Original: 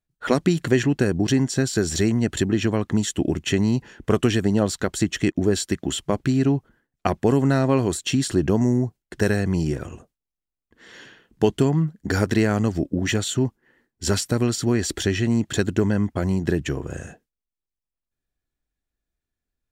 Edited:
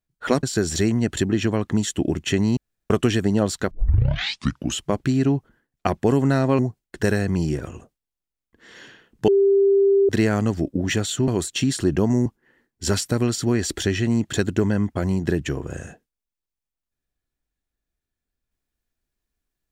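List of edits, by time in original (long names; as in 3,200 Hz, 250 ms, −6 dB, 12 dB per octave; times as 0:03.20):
0:00.43–0:01.63: remove
0:03.77–0:04.10: fill with room tone
0:04.91: tape start 1.10 s
0:07.79–0:08.77: move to 0:13.46
0:11.46–0:12.27: beep over 395 Hz −13 dBFS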